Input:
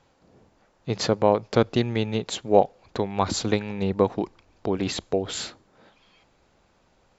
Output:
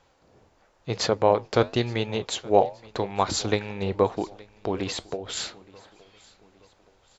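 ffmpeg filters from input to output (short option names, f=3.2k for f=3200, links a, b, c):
-filter_complex "[0:a]equalizer=f=200:t=o:w=1.4:g=-7,asettb=1/sr,asplit=3[a][b][c];[a]atrim=end=4.834[d];[b]atrim=start=4.83:end=5.37,asetpts=PTS-STARTPTS,afade=t=in:d=0.004:c=qsin,afade=t=out:st=0.536:d=0.004:c=qsin,acompressor=threshold=-29dB:ratio=6[e];[c]atrim=start=5.366[f];[d][e]acrossfade=d=0.004:c1=hsin:c2=qsin[g];[g][f]acrossfade=d=0.004:c1=qsin:c2=hsin,flanger=delay=3.8:depth=7.9:regen=-78:speed=0.95:shape=triangular,aecho=1:1:871|1742|2613:0.0668|0.0301|0.0135,volume=5.5dB"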